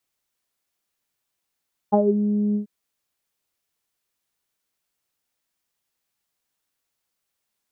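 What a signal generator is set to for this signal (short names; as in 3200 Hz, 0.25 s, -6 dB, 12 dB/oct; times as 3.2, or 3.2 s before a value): synth note saw G#3 24 dB/oct, low-pass 310 Hz, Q 5.9, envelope 1.5 oct, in 0.23 s, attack 20 ms, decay 0.07 s, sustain -6 dB, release 0.11 s, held 0.63 s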